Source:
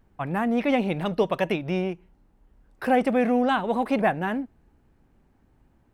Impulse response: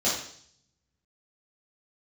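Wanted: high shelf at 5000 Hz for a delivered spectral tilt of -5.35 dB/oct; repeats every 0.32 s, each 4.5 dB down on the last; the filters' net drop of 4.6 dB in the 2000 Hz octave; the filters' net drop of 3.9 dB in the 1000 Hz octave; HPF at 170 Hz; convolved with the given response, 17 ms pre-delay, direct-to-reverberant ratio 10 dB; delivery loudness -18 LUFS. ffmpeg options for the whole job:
-filter_complex "[0:a]highpass=170,equalizer=f=1k:t=o:g=-5,equalizer=f=2k:t=o:g=-3.5,highshelf=f=5k:g=-5,aecho=1:1:320|640|960|1280|1600|1920|2240|2560|2880:0.596|0.357|0.214|0.129|0.0772|0.0463|0.0278|0.0167|0.01,asplit=2[a][b];[1:a]atrim=start_sample=2205,adelay=17[c];[b][c]afir=irnorm=-1:irlink=0,volume=-22dB[d];[a][d]amix=inputs=2:normalize=0,volume=7.5dB"

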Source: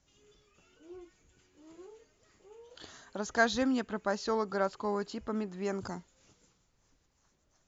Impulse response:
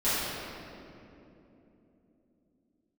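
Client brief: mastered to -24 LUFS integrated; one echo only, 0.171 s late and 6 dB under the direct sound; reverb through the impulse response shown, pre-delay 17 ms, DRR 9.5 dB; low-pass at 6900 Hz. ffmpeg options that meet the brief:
-filter_complex "[0:a]lowpass=6.9k,aecho=1:1:171:0.501,asplit=2[a][b];[1:a]atrim=start_sample=2205,adelay=17[c];[b][c]afir=irnorm=-1:irlink=0,volume=-22.5dB[d];[a][d]amix=inputs=2:normalize=0,volume=8dB"

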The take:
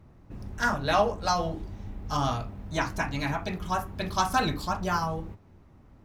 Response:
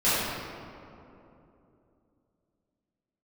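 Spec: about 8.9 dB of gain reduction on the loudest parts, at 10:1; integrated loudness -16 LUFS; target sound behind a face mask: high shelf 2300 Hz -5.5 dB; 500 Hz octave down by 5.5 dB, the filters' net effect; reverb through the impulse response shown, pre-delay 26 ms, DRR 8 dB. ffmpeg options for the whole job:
-filter_complex "[0:a]equalizer=f=500:t=o:g=-7,acompressor=threshold=-30dB:ratio=10,asplit=2[a][b];[1:a]atrim=start_sample=2205,adelay=26[c];[b][c]afir=irnorm=-1:irlink=0,volume=-24.5dB[d];[a][d]amix=inputs=2:normalize=0,highshelf=f=2.3k:g=-5.5,volume=20dB"

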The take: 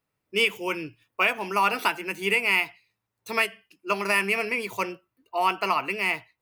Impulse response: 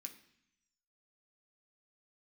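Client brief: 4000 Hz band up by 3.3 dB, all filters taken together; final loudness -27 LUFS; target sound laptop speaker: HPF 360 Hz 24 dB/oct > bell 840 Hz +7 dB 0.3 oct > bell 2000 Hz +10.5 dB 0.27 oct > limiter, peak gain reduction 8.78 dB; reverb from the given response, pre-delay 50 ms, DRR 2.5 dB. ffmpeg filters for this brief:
-filter_complex "[0:a]equalizer=f=4k:t=o:g=4.5,asplit=2[a][b];[1:a]atrim=start_sample=2205,adelay=50[c];[b][c]afir=irnorm=-1:irlink=0,volume=4dB[d];[a][d]amix=inputs=2:normalize=0,highpass=f=360:w=0.5412,highpass=f=360:w=1.3066,equalizer=f=840:t=o:w=0.3:g=7,equalizer=f=2k:t=o:w=0.27:g=10.5,volume=-6.5dB,alimiter=limit=-16dB:level=0:latency=1"

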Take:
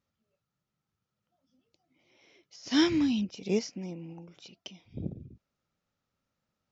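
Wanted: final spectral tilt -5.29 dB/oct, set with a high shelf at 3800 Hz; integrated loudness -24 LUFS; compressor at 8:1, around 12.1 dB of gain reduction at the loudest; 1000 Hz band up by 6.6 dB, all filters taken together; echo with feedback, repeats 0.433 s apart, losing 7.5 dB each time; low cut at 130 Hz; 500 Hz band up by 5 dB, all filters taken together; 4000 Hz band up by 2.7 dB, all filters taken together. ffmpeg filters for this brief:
-af "highpass=130,equalizer=f=500:t=o:g=6.5,equalizer=f=1k:t=o:g=6,highshelf=f=3.8k:g=-5,equalizer=f=4k:t=o:g=6.5,acompressor=threshold=-30dB:ratio=8,aecho=1:1:433|866|1299|1732|2165:0.422|0.177|0.0744|0.0312|0.0131,volume=13.5dB"

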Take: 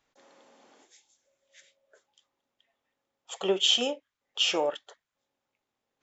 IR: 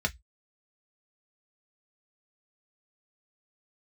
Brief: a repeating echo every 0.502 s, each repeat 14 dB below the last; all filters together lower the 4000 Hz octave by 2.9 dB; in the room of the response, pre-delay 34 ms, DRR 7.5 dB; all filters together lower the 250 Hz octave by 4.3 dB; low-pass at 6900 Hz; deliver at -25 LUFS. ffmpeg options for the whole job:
-filter_complex "[0:a]lowpass=6.9k,equalizer=f=250:t=o:g=-7,equalizer=f=4k:t=o:g=-4,aecho=1:1:502|1004:0.2|0.0399,asplit=2[a][b];[1:a]atrim=start_sample=2205,adelay=34[c];[b][c]afir=irnorm=-1:irlink=0,volume=-15dB[d];[a][d]amix=inputs=2:normalize=0,volume=4.5dB"

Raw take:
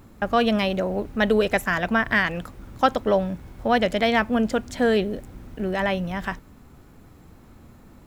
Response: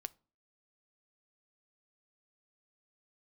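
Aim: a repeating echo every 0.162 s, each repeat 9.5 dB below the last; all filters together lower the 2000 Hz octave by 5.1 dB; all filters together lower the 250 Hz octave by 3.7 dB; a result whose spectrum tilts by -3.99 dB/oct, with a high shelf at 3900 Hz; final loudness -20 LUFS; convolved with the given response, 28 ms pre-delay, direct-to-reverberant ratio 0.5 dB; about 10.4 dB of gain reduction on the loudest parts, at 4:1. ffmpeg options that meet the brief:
-filter_complex "[0:a]equalizer=f=250:t=o:g=-4.5,equalizer=f=2k:t=o:g=-7.5,highshelf=f=3.9k:g=6,acompressor=threshold=-29dB:ratio=4,aecho=1:1:162|324|486|648:0.335|0.111|0.0365|0.012,asplit=2[a][b];[1:a]atrim=start_sample=2205,adelay=28[c];[b][c]afir=irnorm=-1:irlink=0,volume=3dB[d];[a][d]amix=inputs=2:normalize=0,volume=9.5dB"

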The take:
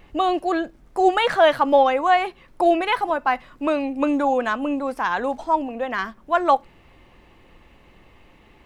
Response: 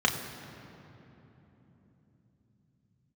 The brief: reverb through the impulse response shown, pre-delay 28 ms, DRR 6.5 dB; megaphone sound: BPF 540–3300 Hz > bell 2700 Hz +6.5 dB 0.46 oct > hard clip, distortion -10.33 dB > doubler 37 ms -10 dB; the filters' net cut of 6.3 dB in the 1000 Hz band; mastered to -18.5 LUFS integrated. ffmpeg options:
-filter_complex "[0:a]equalizer=f=1k:t=o:g=-8,asplit=2[a][b];[1:a]atrim=start_sample=2205,adelay=28[c];[b][c]afir=irnorm=-1:irlink=0,volume=-19.5dB[d];[a][d]amix=inputs=2:normalize=0,highpass=540,lowpass=3.3k,equalizer=f=2.7k:t=o:w=0.46:g=6.5,asoftclip=type=hard:threshold=-20dB,asplit=2[e][f];[f]adelay=37,volume=-10dB[g];[e][g]amix=inputs=2:normalize=0,volume=8dB"

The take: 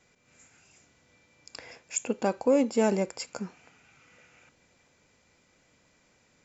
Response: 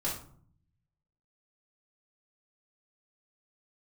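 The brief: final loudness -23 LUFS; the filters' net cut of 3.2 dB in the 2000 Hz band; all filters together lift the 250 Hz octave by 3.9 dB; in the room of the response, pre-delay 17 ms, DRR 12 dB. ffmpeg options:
-filter_complex "[0:a]equalizer=f=250:t=o:g=4.5,equalizer=f=2k:t=o:g=-4.5,asplit=2[a][b];[1:a]atrim=start_sample=2205,adelay=17[c];[b][c]afir=irnorm=-1:irlink=0,volume=-16.5dB[d];[a][d]amix=inputs=2:normalize=0,volume=3dB"

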